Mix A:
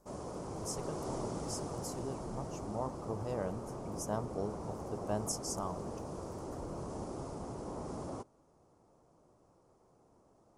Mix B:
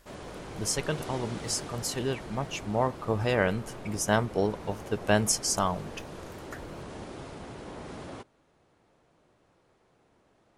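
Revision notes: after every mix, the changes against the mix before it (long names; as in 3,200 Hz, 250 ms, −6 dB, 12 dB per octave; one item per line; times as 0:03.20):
speech +11.5 dB
master: add flat-topped bell 2,500 Hz +14.5 dB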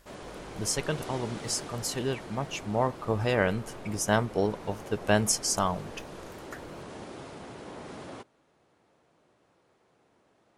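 background: add high-pass filter 140 Hz 6 dB per octave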